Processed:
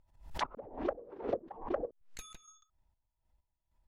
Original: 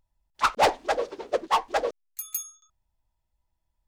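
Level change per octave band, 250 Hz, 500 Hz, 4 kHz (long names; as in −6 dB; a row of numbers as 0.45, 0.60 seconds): −1.5, −10.0, −16.0 decibels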